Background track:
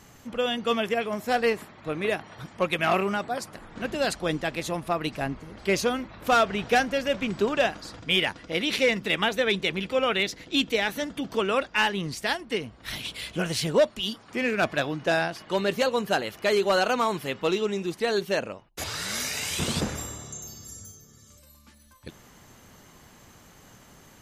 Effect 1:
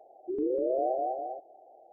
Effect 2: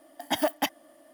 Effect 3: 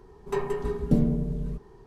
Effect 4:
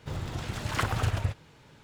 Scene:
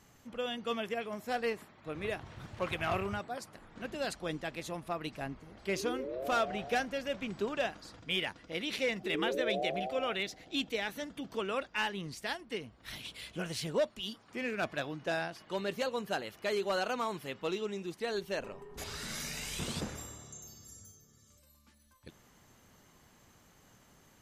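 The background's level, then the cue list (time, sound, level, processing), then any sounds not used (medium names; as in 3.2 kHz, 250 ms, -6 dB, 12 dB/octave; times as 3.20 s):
background track -10 dB
1.88 s: add 4 -15.5 dB + treble shelf 5.6 kHz -11 dB
5.46 s: add 1 -10.5 dB
8.76 s: add 1 -6.5 dB
18.12 s: add 3 -11 dB + compression, threshold -35 dBFS
not used: 2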